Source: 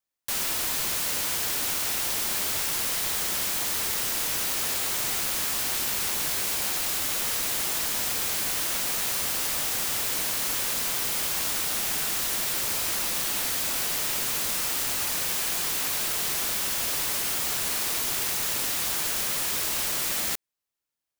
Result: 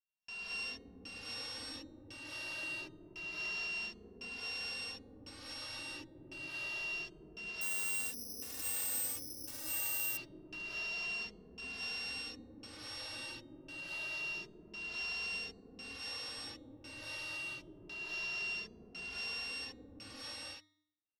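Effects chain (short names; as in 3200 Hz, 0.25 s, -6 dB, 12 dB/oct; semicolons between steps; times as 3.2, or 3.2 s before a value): sample sorter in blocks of 16 samples; de-hum 100.1 Hz, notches 3; limiter -22 dBFS, peak gain reduction 7.5 dB; LFO low-pass square 0.95 Hz 310–4700 Hz; resonator 310 Hz, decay 0.7 s, mix 50%; non-linear reverb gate 0.26 s rising, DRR -6 dB; 7.61–10.17 careless resampling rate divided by 8×, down filtered, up zero stuff; endless flanger 2.5 ms +0.27 Hz; gain -8.5 dB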